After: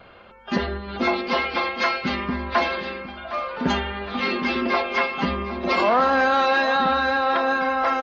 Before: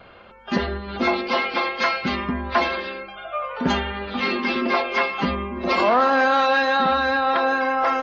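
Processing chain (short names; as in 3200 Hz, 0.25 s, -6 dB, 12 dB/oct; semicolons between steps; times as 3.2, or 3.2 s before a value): feedback echo 0.76 s, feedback 41%, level -14 dB; gain -1 dB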